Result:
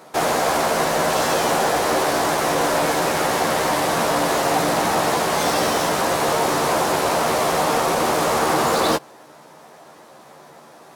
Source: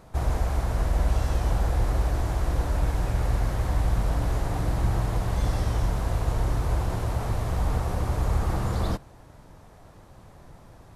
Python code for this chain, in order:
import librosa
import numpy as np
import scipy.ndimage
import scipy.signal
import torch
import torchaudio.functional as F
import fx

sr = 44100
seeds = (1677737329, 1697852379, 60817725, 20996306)

p1 = scipy.signal.sosfilt(scipy.signal.butter(4, 150.0, 'highpass', fs=sr, output='sos'), x)
p2 = fx.bass_treble(p1, sr, bass_db=-13, treble_db=3)
p3 = fx.quant_companded(p2, sr, bits=2)
p4 = p2 + (p3 * 10.0 ** (-7.0 / 20.0))
p5 = fx.doubler(p4, sr, ms=13.0, db=-4.5)
p6 = np.interp(np.arange(len(p5)), np.arange(len(p5))[::2], p5[::2])
y = p6 * 10.0 ** (9.0 / 20.0)